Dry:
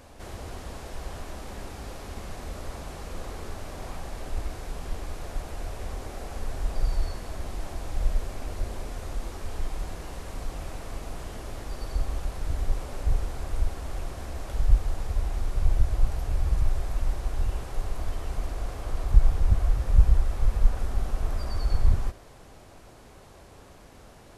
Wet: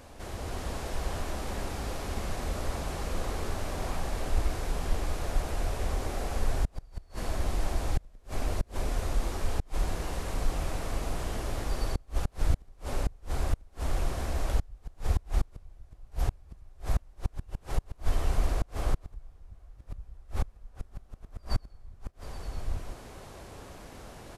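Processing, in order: delay 831 ms -16.5 dB; inverted gate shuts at -18 dBFS, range -32 dB; level rider gain up to 4 dB

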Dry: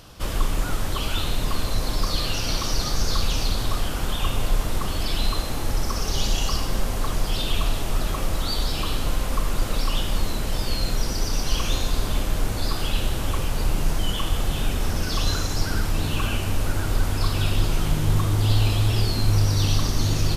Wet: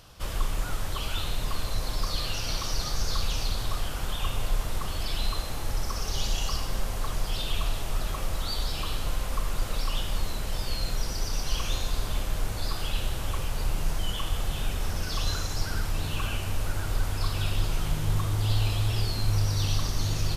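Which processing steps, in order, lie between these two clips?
peaking EQ 270 Hz -6 dB 1.2 oct; trim -5 dB

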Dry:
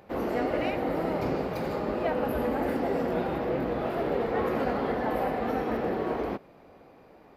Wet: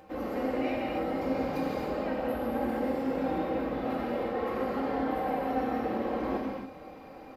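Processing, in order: comb 3.8 ms, depth 52%; reverse; compression 5:1, threshold -35 dBFS, peak gain reduction 12 dB; reverse; flange 0.59 Hz, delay 6.3 ms, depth 2.6 ms, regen +63%; gated-style reverb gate 310 ms flat, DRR -2.5 dB; trim +5.5 dB

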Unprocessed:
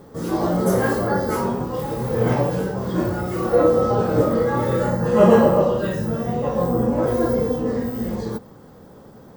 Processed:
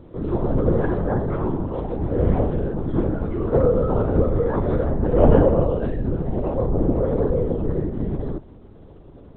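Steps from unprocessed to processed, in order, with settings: tilt shelf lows +7 dB, about 690 Hz; added noise blue -55 dBFS; LPC vocoder at 8 kHz whisper; trim -4 dB

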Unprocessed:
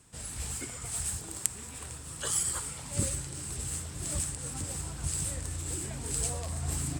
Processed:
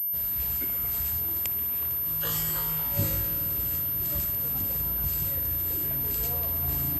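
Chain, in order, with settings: 2.01–3.35 s: flutter echo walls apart 3.3 m, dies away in 0.36 s; spring tank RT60 3.8 s, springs 51 ms, chirp 25 ms, DRR 5 dB; class-D stage that switches slowly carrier 13 kHz

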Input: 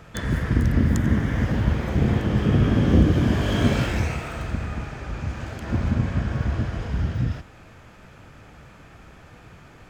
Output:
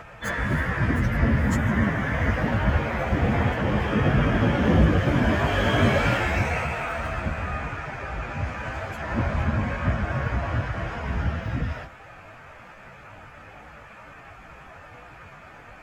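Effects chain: high-order bell 1.2 kHz +9 dB 2.6 oct; plain phase-vocoder stretch 1.6×

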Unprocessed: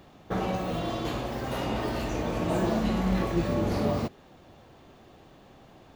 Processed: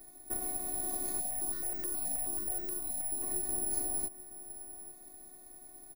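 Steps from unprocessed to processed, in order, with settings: high-pass 71 Hz 24 dB/octave; peaking EQ 1.2 kHz -13.5 dB 1.7 oct; compression, threshold -35 dBFS, peak gain reduction 11.5 dB; robot voice 363 Hz; static phaser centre 590 Hz, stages 8; delay 837 ms -18 dB; careless resampling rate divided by 4×, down filtered, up zero stuff; 1.20–3.23 s: stepped phaser 9.4 Hz 360–3500 Hz; trim +4.5 dB

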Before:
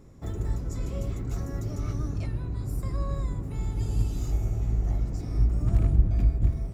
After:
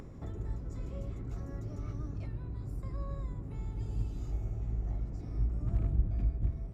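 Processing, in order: low-pass 2.6 kHz 6 dB/octave; upward compressor, threshold -27 dBFS; trim -8.5 dB

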